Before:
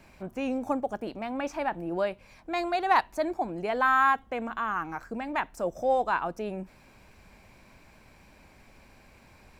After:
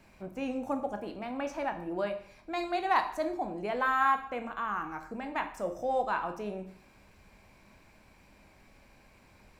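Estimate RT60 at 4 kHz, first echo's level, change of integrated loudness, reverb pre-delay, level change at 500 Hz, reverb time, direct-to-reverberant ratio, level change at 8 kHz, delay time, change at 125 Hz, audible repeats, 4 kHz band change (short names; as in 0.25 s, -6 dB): 0.55 s, none, -4.0 dB, 6 ms, -4.0 dB, 0.60 s, 6.5 dB, n/a, none, -4.0 dB, none, -3.0 dB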